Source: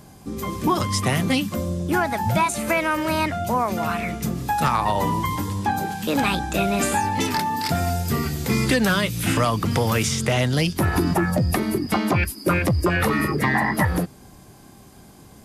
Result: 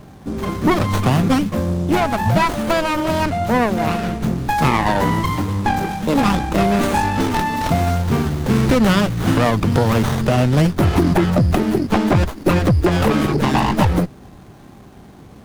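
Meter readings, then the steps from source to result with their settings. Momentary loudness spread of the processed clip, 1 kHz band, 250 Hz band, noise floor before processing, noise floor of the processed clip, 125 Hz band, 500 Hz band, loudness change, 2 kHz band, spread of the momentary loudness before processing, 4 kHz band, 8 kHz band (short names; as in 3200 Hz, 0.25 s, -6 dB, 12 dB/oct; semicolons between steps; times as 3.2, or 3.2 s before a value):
5 LU, +3.5 dB, +6.0 dB, -47 dBFS, -42 dBFS, +6.0 dB, +5.5 dB, +4.5 dB, +0.5 dB, 5 LU, +1.0 dB, -3.0 dB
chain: running maximum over 17 samples; gain +6 dB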